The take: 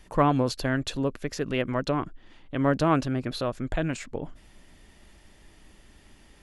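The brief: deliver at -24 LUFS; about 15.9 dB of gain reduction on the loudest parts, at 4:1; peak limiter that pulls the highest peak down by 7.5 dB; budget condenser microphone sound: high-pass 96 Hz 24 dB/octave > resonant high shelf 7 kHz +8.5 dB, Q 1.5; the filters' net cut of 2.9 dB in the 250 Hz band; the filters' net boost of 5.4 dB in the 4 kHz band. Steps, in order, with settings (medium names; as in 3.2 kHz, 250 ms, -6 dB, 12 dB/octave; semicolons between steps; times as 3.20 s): peaking EQ 250 Hz -3.5 dB; peaking EQ 4 kHz +8.5 dB; compression 4:1, threshold -37 dBFS; peak limiter -30.5 dBFS; high-pass 96 Hz 24 dB/octave; resonant high shelf 7 kHz +8.5 dB, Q 1.5; trim +20 dB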